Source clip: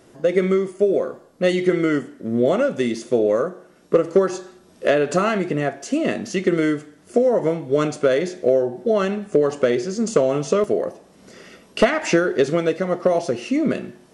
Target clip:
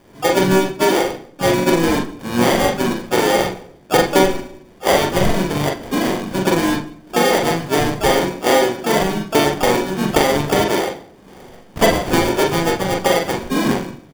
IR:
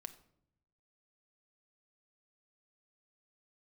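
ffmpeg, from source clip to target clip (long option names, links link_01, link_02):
-filter_complex "[0:a]acrusher=samples=33:mix=1:aa=0.000001,asplit=4[link_01][link_02][link_03][link_04];[link_02]asetrate=29433,aresample=44100,atempo=1.49831,volume=-10dB[link_05];[link_03]asetrate=35002,aresample=44100,atempo=1.25992,volume=-8dB[link_06];[link_04]asetrate=66075,aresample=44100,atempo=0.66742,volume=-8dB[link_07];[link_01][link_05][link_06][link_07]amix=inputs=4:normalize=0,asplit=2[link_08][link_09];[1:a]atrim=start_sample=2205,lowpass=6100,adelay=42[link_10];[link_09][link_10]afir=irnorm=-1:irlink=0,volume=3dB[link_11];[link_08][link_11]amix=inputs=2:normalize=0,volume=-1dB"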